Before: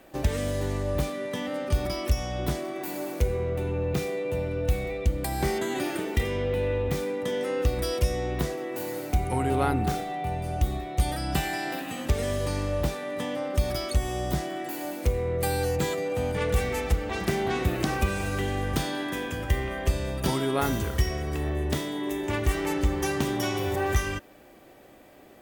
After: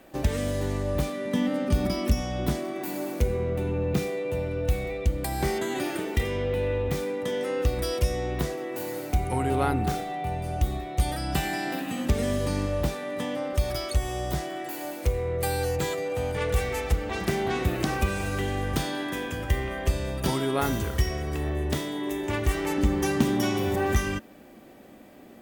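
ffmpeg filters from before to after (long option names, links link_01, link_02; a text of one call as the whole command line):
ffmpeg -i in.wav -af "asetnsamples=nb_out_samples=441:pad=0,asendcmd='1.26 equalizer g 14;2.21 equalizer g 6.5;4.08 equalizer g -0.5;11.42 equalizer g 8.5;12.66 equalizer g 2;13.53 equalizer g -7;16.91 equalizer g 0;22.78 equalizer g 10.5',equalizer=frequency=220:width_type=o:width=0.69:gain=3" out.wav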